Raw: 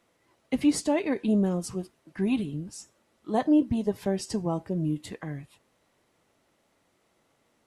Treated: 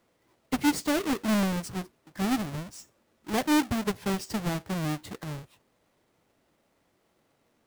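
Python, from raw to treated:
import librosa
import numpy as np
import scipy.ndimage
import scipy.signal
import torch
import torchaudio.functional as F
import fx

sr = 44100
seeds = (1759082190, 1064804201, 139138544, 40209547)

y = fx.halfwave_hold(x, sr)
y = F.gain(torch.from_numpy(y), -5.5).numpy()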